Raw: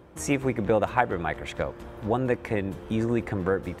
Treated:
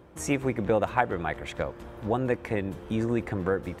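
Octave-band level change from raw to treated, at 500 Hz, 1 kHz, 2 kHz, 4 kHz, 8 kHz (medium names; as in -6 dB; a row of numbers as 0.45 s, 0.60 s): -1.5 dB, -1.5 dB, -1.5 dB, -1.5 dB, -1.5 dB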